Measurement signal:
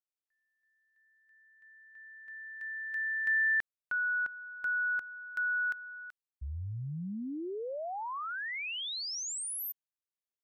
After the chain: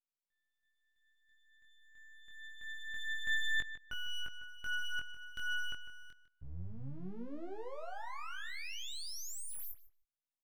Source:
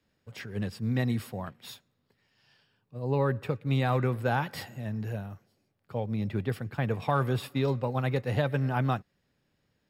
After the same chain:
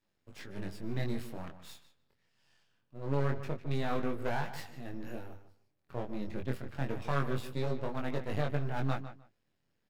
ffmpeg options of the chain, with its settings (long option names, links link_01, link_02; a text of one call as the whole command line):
ffmpeg -i in.wav -filter_complex "[0:a]aeval=exprs='max(val(0),0)':channel_layout=same,flanger=delay=20:depth=3.6:speed=0.25,asplit=2[link_01][link_02];[link_02]adelay=152,lowpass=frequency=4000:poles=1,volume=-12dB,asplit=2[link_03][link_04];[link_04]adelay=152,lowpass=frequency=4000:poles=1,volume=0.18[link_05];[link_03][link_05]amix=inputs=2:normalize=0[link_06];[link_01][link_06]amix=inputs=2:normalize=0" out.wav